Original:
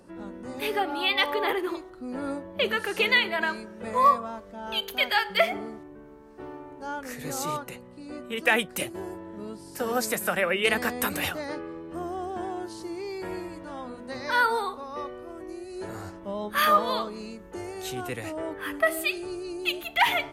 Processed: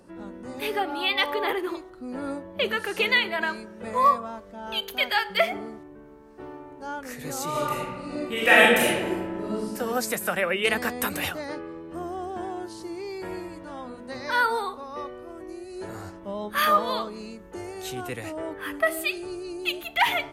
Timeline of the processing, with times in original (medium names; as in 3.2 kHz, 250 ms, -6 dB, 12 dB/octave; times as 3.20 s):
7.50–9.66 s: reverb throw, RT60 1.3 s, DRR -7.5 dB